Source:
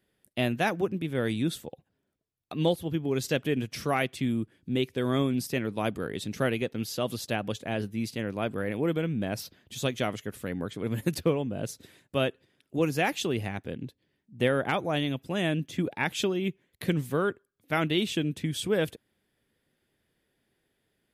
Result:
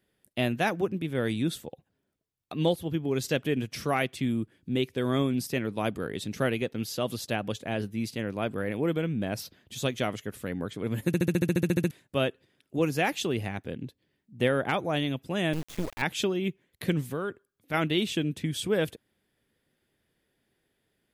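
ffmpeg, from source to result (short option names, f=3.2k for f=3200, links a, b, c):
-filter_complex "[0:a]asettb=1/sr,asplit=3[a][b][c];[a]atrim=end=15.534[d];[b]atrim=start=15.53:end=16.02,asetpts=PTS-STARTPTS,afade=t=in:d=0.004:c=qsin,afade=t=out:st=0.486:d=0.004:c=qsin,acrusher=bits=4:dc=4:mix=0:aa=0.000001[e];[c]atrim=start=16.016[f];[d][e]acrossfade=d=0.004:c1=hsin:c2=qsin[g];[g][f]acrossfade=d=0.004:c1=qsin:c2=hsin,asettb=1/sr,asplit=3[h][i][j];[h]atrim=end=17.114[k];[i]atrim=start=17.11:end=17.74,asetpts=PTS-STARTPTS,afade=t=in:d=0.004:c=qsin,afade=t=out:st=0.626:d=0.004:c=qsin,acompressor=threshold=-31dB:ratio=2:attack=3.2:release=140:knee=1:detection=peak[l];[j]atrim=start=17.736[m];[k][l]acrossfade=d=0.004:c1=hsin:c2=qsin[n];[n][m]acrossfade=d=0.004:c1=qsin:c2=hsin,asplit=13[o][p][q][r][s][t][u][v][w][x][y][z][aa];[o]atrim=end=11.142[ab];[p]atrim=start=11.068:end=11.142[ac];[q]atrim=start=11.068:end=11.142[ad];[r]atrim=start=11.068:end=11.142[ae];[s]atrim=start=11.068:end=11.142[af];[t]atrim=start=11.068:end=11.142[ag];[u]atrim=start=11.068:end=11.142[ah];[v]atrim=start=11.068:end=11.142[ai];[w]atrim=start=11.068:end=11.142[aj];[x]atrim=start=11.068:end=11.142[ak];[y]atrim=start=11.068:end=11.142[al];[z]atrim=start=11.068:end=11.142[am];[aa]atrim=start=11.908[an];[ab][ac]acrossfade=d=0.004:c1=hsin:c2=hsin[ao];[ao][ad]acrossfade=d=0.004:c1=hsin:c2=hsin[ap];[ap][ae]acrossfade=d=0.004:c1=hsin:c2=hsin[aq];[aq][af]acrossfade=d=0.004:c1=hsin:c2=hsin[ar];[ar][ag]acrossfade=d=0.004:c1=hsin:c2=hsin[as];[as][ah]acrossfade=d=0.004:c1=hsin:c2=hsin[at];[at][ai]acrossfade=d=0.004:c1=hsin:c2=hsin[au];[au][aj]acrossfade=d=0.004:c1=hsin:c2=hsin[av];[av][ak]acrossfade=d=0.004:c1=hsin:c2=hsin[aw];[aw][al]acrossfade=d=0.004:c1=hsin:c2=hsin[ax];[ax][am]acrossfade=d=0.004:c1=hsin:c2=hsin[ay];[ay][an]acrossfade=d=0.004:c1=hsin:c2=hsin"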